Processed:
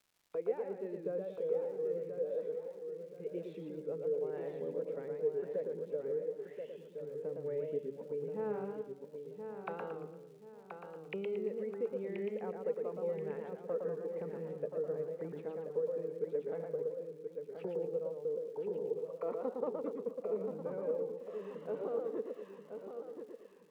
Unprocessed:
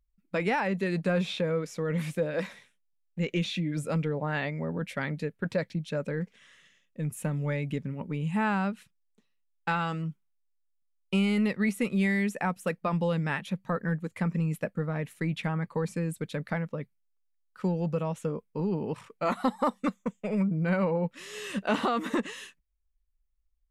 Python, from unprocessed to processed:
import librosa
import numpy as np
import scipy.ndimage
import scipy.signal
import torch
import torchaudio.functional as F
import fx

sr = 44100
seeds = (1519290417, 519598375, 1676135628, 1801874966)

p1 = fx.auto_wah(x, sr, base_hz=450.0, top_hz=3800.0, q=9.6, full_db=-31.5, direction='down')
p2 = fx.rider(p1, sr, range_db=3, speed_s=0.5)
p3 = fx.dmg_crackle(p2, sr, seeds[0], per_s=190.0, level_db=-62.0)
p4 = p3 + fx.echo_feedback(p3, sr, ms=1029, feedback_pct=34, wet_db=-7, dry=0)
p5 = fx.echo_warbled(p4, sr, ms=115, feedback_pct=39, rate_hz=2.8, cents=135, wet_db=-4.5)
y = F.gain(torch.from_numpy(p5), 2.5).numpy()